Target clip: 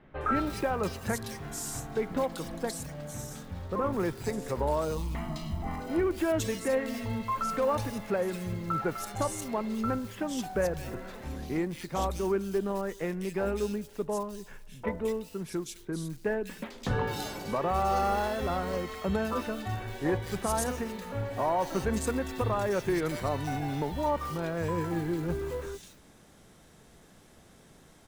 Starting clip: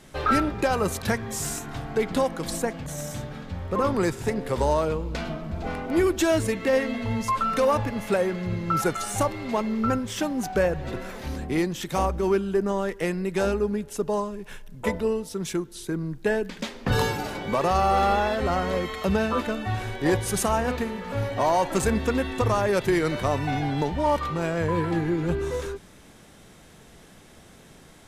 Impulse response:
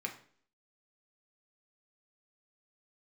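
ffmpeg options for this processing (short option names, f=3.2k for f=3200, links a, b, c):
-filter_complex "[0:a]acrusher=bits=6:mode=log:mix=0:aa=0.000001,asettb=1/sr,asplit=3[a][b][c];[a]atrim=end=4.974[d];[b]atrim=start=4.97:end=5.8,asetpts=PTS-STARTPTS,afade=t=in:d=0.004:c=qsin,afade=t=out:st=0.826:d=0.004:c=qsin,aecho=1:1:1:0.73,atrim=end_sample=36603[e];[c]atrim=start=5.796[f];[d][e]acrossfade=d=0.004:c1=hsin:c2=qsin[g];[g][f]acrossfade=d=0.004:c1=qsin:c2=hsin,acrossover=split=2600[h][i];[i]adelay=210[j];[h][j]amix=inputs=2:normalize=0,volume=-6dB"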